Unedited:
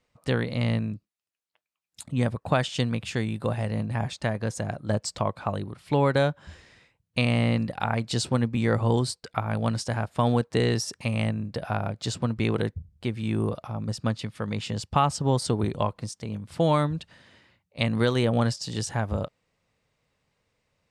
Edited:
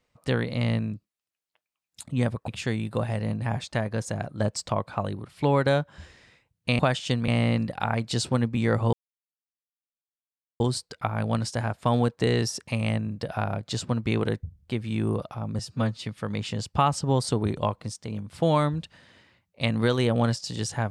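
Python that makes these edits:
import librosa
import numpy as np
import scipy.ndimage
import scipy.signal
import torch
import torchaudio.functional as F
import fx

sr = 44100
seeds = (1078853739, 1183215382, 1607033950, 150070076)

y = fx.edit(x, sr, fx.move(start_s=2.48, length_s=0.49, to_s=7.28),
    fx.insert_silence(at_s=8.93, length_s=1.67),
    fx.stretch_span(start_s=13.92, length_s=0.31, factor=1.5), tone=tone)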